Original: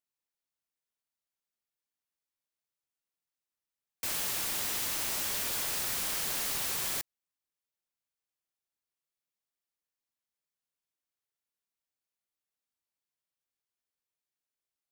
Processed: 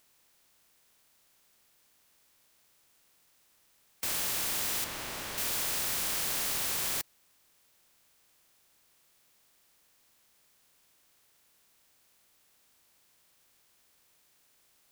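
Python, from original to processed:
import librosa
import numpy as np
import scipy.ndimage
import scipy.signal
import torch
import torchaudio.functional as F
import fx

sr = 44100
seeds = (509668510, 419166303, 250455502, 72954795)

y = fx.bin_compress(x, sr, power=0.6)
y = fx.high_shelf(y, sr, hz=4200.0, db=-11.5, at=(4.84, 5.38))
y = y * 10.0 ** (-1.5 / 20.0)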